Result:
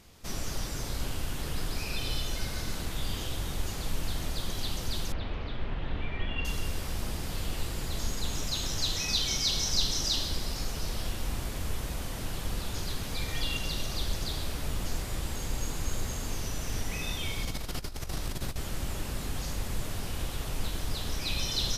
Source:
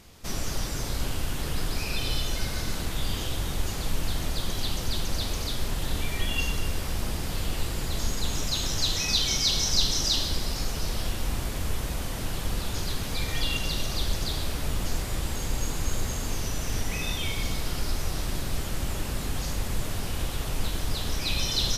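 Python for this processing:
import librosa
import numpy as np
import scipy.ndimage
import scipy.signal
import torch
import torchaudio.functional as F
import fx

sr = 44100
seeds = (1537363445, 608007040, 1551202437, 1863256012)

y = fx.lowpass(x, sr, hz=2900.0, slope=24, at=(5.12, 6.45))
y = fx.over_compress(y, sr, threshold_db=-29.0, ratio=-0.5, at=(17.45, 18.56))
y = y * 10.0 ** (-4.0 / 20.0)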